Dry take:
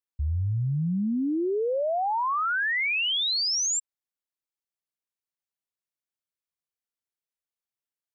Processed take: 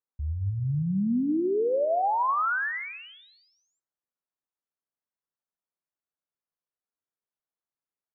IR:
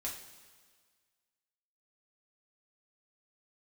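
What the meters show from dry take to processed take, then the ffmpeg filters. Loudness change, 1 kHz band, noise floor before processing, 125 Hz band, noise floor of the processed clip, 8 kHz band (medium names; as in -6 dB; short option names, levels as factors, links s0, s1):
-1.5 dB, +1.0 dB, under -85 dBFS, -1.5 dB, under -85 dBFS, no reading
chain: -filter_complex "[0:a]lowpass=f=1600:w=0.5412,lowpass=f=1600:w=1.3066,lowshelf=f=87:g=-8,asplit=2[s0][s1];[s1]adelay=162,lowpass=f=1100:p=1,volume=0.178,asplit=2[s2][s3];[s3]adelay=162,lowpass=f=1100:p=1,volume=0.47,asplit=2[s4][s5];[s5]adelay=162,lowpass=f=1100:p=1,volume=0.47,asplit=2[s6][s7];[s7]adelay=162,lowpass=f=1100:p=1,volume=0.47[s8];[s0][s2][s4][s6][s8]amix=inputs=5:normalize=0,asplit=2[s9][s10];[1:a]atrim=start_sample=2205,atrim=end_sample=4410,lowpass=4300[s11];[s10][s11]afir=irnorm=-1:irlink=0,volume=0.282[s12];[s9][s12]amix=inputs=2:normalize=0"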